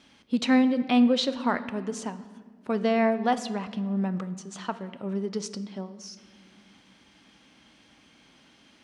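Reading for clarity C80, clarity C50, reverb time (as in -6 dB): 15.5 dB, 14.0 dB, 1.8 s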